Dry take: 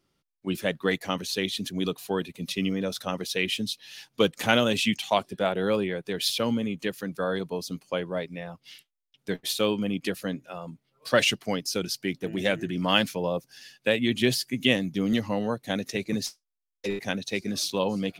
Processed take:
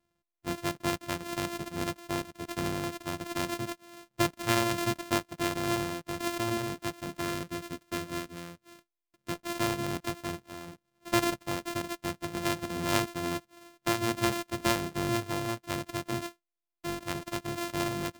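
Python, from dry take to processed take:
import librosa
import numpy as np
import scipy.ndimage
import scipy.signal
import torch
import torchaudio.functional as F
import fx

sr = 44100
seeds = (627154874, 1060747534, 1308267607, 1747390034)

y = np.r_[np.sort(x[:len(x) // 128 * 128].reshape(-1, 128), axis=1).ravel(), x[len(x) // 128 * 128:]]
y = fx.peak_eq(y, sr, hz=800.0, db=-10.0, octaves=0.26, at=(7.22, 9.32))
y = y * librosa.db_to_amplitude(-5.0)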